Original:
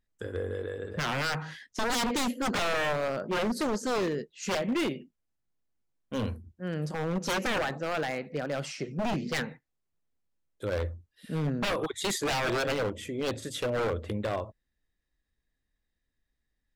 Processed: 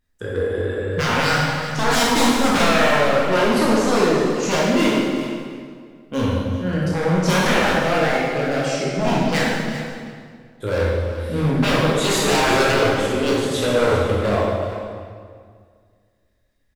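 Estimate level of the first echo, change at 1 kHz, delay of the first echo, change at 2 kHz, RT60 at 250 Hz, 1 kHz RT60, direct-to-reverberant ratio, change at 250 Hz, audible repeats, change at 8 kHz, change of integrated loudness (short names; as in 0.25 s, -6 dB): -12.5 dB, +12.5 dB, 0.382 s, +12.5 dB, 2.2 s, 1.9 s, -6.0 dB, +13.0 dB, 1, +11.5 dB, +12.0 dB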